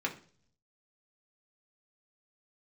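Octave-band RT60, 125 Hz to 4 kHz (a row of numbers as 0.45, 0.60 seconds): 1.0, 0.70, 0.55, 0.40, 0.40, 0.50 seconds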